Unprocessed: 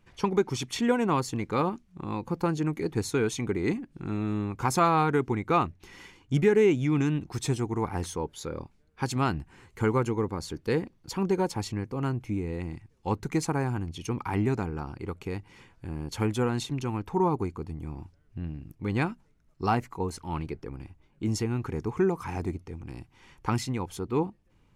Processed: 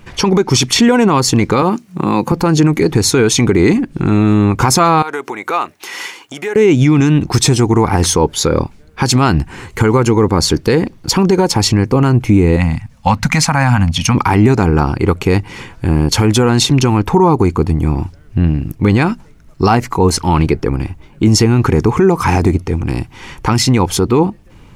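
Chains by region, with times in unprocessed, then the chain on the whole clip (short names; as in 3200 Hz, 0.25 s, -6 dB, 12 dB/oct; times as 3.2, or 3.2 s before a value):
1.62–2.32 HPF 130 Hz 24 dB/oct + high shelf 9800 Hz +8.5 dB + notch 3400 Hz, Q 19
5.02–6.56 high shelf 9600 Hz +7.5 dB + compressor 8:1, threshold -33 dBFS + HPF 560 Hz
12.56–14.15 Chebyshev band-stop 240–600 Hz + dynamic EQ 2100 Hz, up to +7 dB, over -48 dBFS, Q 0.71
whole clip: dynamic EQ 5200 Hz, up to +5 dB, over -56 dBFS, Q 2.2; compressor, threshold -26 dBFS; maximiser +24 dB; gain -1 dB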